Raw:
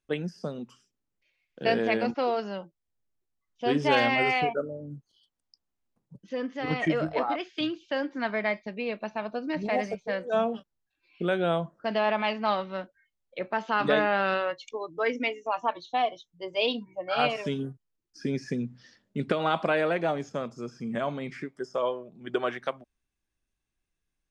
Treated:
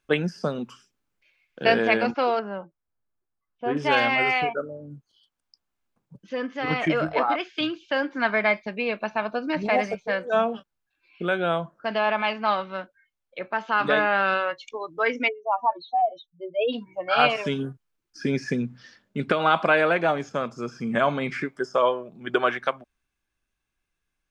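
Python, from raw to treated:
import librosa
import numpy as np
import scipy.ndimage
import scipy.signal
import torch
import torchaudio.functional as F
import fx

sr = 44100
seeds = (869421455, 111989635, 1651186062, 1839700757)

y = fx.lowpass(x, sr, hz=1500.0, slope=12, at=(2.39, 3.77))
y = fx.spec_expand(y, sr, power=2.6, at=(15.27, 16.72), fade=0.02)
y = fx.peak_eq(y, sr, hz=1600.0, db=7.5, octaves=1.9)
y = fx.notch(y, sr, hz=1900.0, q=12.0)
y = fx.rider(y, sr, range_db=10, speed_s=2.0)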